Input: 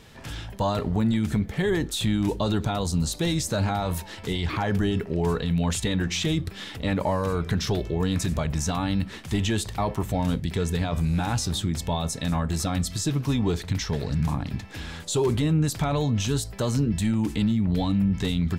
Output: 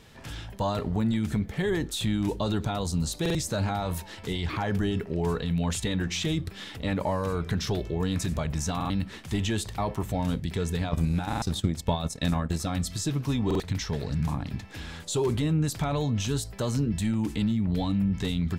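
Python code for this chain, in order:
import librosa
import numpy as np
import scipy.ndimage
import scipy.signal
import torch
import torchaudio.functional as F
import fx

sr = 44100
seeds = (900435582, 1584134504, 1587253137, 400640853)

y = fx.transient(x, sr, attack_db=8, sustain_db=-11, at=(10.89, 12.65))
y = fx.buffer_glitch(y, sr, at_s=(3.21, 8.76, 11.28, 13.46), block=2048, repeats=2)
y = y * 10.0 ** (-3.0 / 20.0)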